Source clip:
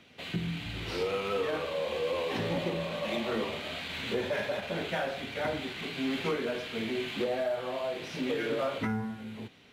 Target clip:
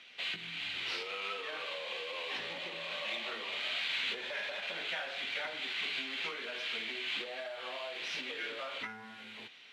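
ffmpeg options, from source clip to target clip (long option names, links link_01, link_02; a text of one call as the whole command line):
ffmpeg -i in.wav -af "acompressor=threshold=-34dB:ratio=6,bandpass=frequency=2900:width_type=q:width=0.91:csg=0,volume=6dB" out.wav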